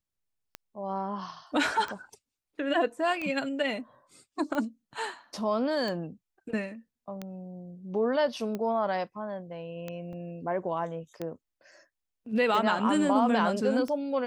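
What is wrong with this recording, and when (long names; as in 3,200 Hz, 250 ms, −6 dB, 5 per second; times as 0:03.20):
scratch tick 45 rpm −21 dBFS
0:10.13: drop-out 3.8 ms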